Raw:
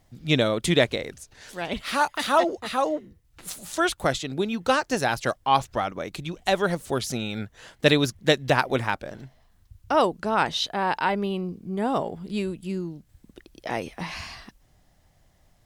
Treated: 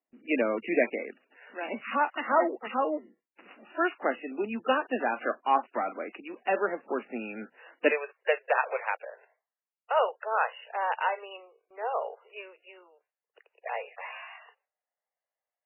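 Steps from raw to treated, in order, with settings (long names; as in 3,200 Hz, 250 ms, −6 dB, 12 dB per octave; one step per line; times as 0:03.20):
Butterworth high-pass 220 Hz 72 dB per octave, from 0:07.89 450 Hz
noise gate with hold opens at −49 dBFS
level −3.5 dB
MP3 8 kbit/s 11,025 Hz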